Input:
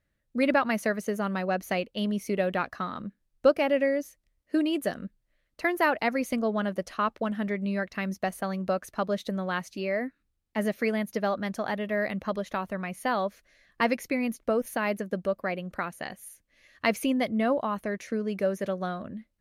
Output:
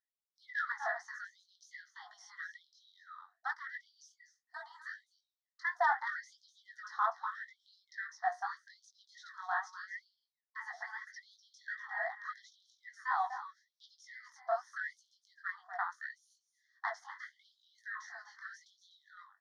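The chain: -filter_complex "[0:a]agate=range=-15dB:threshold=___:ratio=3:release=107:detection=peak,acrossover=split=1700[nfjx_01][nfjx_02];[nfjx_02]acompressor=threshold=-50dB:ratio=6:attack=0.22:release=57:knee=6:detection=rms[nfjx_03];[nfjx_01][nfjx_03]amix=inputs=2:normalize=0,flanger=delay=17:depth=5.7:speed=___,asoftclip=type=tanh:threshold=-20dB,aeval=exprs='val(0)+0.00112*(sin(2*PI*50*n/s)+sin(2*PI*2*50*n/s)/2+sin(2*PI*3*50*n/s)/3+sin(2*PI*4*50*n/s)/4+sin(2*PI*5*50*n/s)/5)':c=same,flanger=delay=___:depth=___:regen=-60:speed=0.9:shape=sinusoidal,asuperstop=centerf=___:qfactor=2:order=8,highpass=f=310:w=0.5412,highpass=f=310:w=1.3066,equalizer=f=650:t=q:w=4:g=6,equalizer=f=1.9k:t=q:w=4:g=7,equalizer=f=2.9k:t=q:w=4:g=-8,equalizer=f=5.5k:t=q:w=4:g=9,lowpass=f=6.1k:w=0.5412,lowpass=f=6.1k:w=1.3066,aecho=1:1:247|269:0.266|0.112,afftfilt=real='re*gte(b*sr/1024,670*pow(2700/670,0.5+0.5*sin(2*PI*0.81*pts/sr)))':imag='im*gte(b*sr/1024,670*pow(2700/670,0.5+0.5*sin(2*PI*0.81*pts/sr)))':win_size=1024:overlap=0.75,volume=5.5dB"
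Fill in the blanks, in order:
-45dB, 2.8, 5.2, 9.4, 2500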